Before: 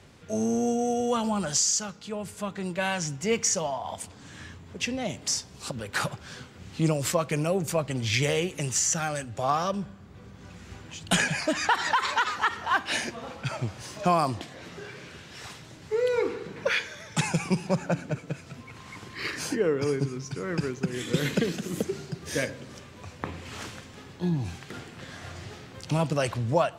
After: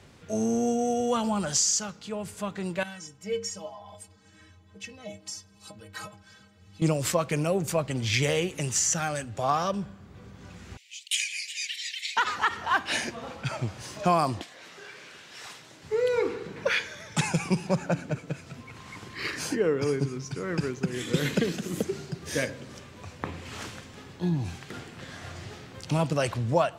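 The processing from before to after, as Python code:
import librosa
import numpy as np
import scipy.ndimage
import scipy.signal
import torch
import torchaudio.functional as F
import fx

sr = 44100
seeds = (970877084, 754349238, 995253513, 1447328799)

y = fx.stiff_resonator(x, sr, f0_hz=94.0, decay_s=0.38, stiffness=0.03, at=(2.83, 6.82))
y = fx.steep_highpass(y, sr, hz=2100.0, slope=72, at=(10.77, 12.17))
y = fx.highpass(y, sr, hz=fx.line((14.42, 1200.0), (15.83, 400.0)), slope=6, at=(14.42, 15.83), fade=0.02)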